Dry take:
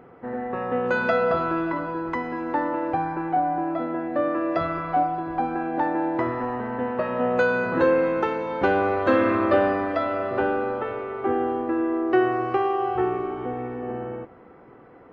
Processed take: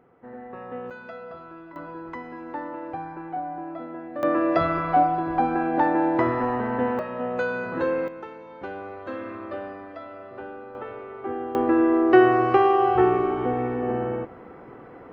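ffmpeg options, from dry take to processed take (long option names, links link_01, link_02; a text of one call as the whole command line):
ffmpeg -i in.wav -af "asetnsamples=nb_out_samples=441:pad=0,asendcmd='0.9 volume volume -18dB;1.76 volume volume -8.5dB;4.23 volume volume 3dB;6.99 volume volume -5.5dB;8.08 volume volume -14.5dB;10.75 volume volume -7dB;11.55 volume volume 5dB',volume=-10dB" out.wav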